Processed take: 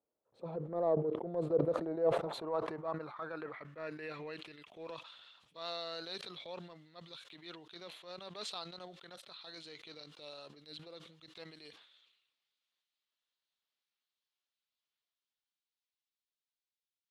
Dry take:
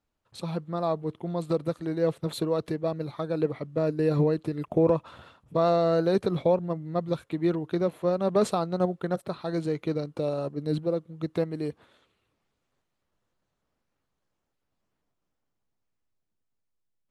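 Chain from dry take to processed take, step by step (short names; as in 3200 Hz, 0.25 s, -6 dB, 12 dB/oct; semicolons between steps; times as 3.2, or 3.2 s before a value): band-pass sweep 500 Hz -> 3700 Hz, 1.6–4.93; transient shaper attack -8 dB, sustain -1 dB; sustainer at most 67 dB/s; gain +2.5 dB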